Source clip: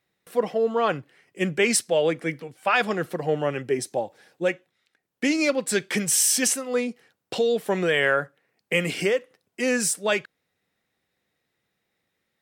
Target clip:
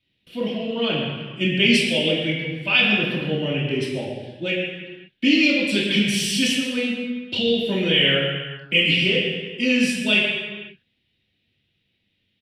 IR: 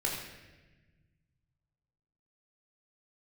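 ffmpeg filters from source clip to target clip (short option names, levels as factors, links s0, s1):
-filter_complex "[0:a]firequalizer=gain_entry='entry(110,0);entry(440,-10);entry(780,-14);entry(1200,-20);entry(2900,9);entry(6500,-17)':delay=0.05:min_phase=1[s0];[1:a]atrim=start_sample=2205,afade=t=out:st=0.42:d=0.01,atrim=end_sample=18963,asetrate=28665,aresample=44100[s1];[s0][s1]afir=irnorm=-1:irlink=0"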